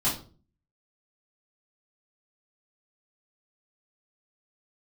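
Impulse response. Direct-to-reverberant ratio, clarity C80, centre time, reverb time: -10.5 dB, 14.0 dB, 29 ms, 0.40 s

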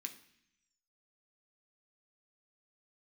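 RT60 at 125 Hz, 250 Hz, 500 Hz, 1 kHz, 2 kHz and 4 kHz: 1.0, 0.95, 0.65, 0.70, 0.95, 1.1 s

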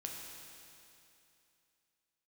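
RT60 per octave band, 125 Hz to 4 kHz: 2.8, 2.8, 2.8, 2.8, 2.8, 2.8 s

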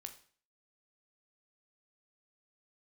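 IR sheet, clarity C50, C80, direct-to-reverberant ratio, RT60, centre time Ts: 12.0 dB, 16.0 dB, 6.0 dB, 0.45 s, 9 ms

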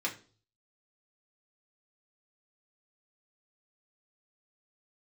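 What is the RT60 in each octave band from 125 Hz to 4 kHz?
0.75, 0.45, 0.45, 0.35, 0.35, 0.40 s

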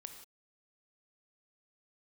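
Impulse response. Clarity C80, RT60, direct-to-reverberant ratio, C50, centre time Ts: 9.0 dB, not exponential, 6.0 dB, 7.0 dB, 19 ms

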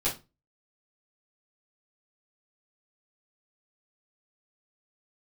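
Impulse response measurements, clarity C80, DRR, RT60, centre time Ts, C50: 19.0 dB, -9.0 dB, 0.25 s, 22 ms, 10.5 dB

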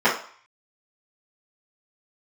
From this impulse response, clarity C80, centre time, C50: 12.0 dB, 28 ms, 7.0 dB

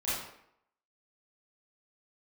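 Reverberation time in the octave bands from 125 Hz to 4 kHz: 0.60, 0.70, 0.70, 0.75, 0.65, 0.50 s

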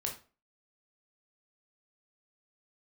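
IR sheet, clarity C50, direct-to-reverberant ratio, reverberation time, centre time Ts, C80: 8.5 dB, 0.0 dB, 0.35 s, 20 ms, 15.0 dB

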